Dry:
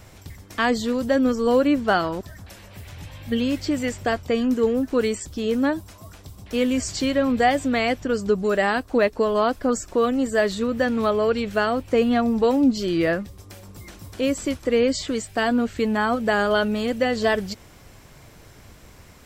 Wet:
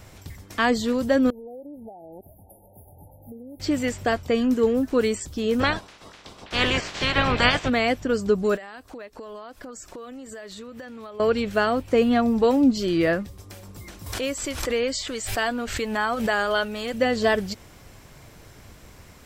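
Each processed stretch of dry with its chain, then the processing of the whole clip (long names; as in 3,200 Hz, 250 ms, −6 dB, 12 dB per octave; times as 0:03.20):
0:01.30–0:03.60: low-shelf EQ 350 Hz −11.5 dB + downward compressor 10 to 1, threshold −36 dBFS + linear-phase brick-wall band-stop 920–9,600 Hz
0:05.59–0:07.68: ceiling on every frequency bin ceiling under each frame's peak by 28 dB + low-pass filter 4,000 Hz
0:08.56–0:11.20: low-shelf EQ 400 Hz −7.5 dB + downward compressor 16 to 1, threshold −35 dBFS
0:14.06–0:16.94: parametric band 170 Hz −10.5 dB 2.9 octaves + background raised ahead of every attack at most 58 dB per second
whole clip: no processing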